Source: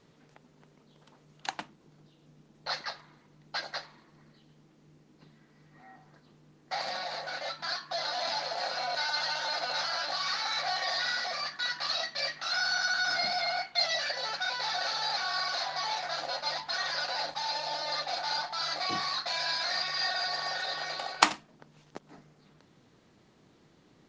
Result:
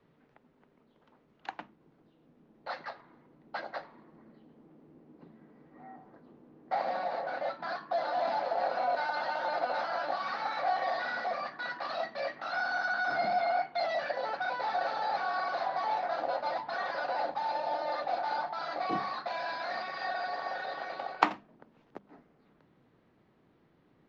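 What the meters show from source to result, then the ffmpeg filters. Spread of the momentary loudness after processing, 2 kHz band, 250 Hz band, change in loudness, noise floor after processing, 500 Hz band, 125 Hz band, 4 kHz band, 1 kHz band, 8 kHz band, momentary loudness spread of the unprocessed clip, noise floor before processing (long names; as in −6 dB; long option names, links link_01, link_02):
12 LU, −3.0 dB, +3.0 dB, −2.5 dB, −67 dBFS, +5.5 dB, −2.5 dB, −15.0 dB, +3.0 dB, below −20 dB, 10 LU, −63 dBFS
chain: -filter_complex "[0:a]lowpass=2300,bandreject=frequency=50:width_type=h:width=6,bandreject=frequency=100:width_type=h:width=6,bandreject=frequency=150:width_type=h:width=6,bandreject=frequency=200:width_type=h:width=6,acrossover=split=120|960[link_01][link_02][link_03];[link_01]aeval=exprs='(mod(1120*val(0)+1,2)-1)/1120':channel_layout=same[link_04];[link_02]dynaudnorm=framelen=310:gausssize=21:maxgain=11dB[link_05];[link_04][link_05][link_03]amix=inputs=3:normalize=0,volume=-4dB"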